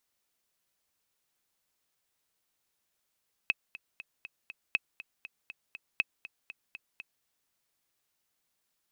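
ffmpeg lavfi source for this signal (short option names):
-f lavfi -i "aevalsrc='pow(10,(-12.5-17*gte(mod(t,5*60/240),60/240))/20)*sin(2*PI*2580*mod(t,60/240))*exp(-6.91*mod(t,60/240)/0.03)':d=3.75:s=44100"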